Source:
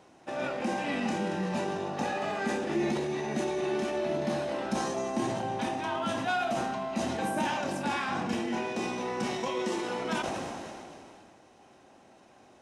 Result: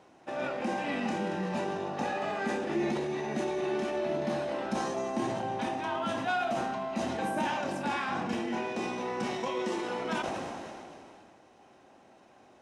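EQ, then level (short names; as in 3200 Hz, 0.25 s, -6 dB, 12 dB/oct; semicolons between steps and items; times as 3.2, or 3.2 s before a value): low shelf 220 Hz -3.5 dB; high shelf 4500 Hz -6.5 dB; 0.0 dB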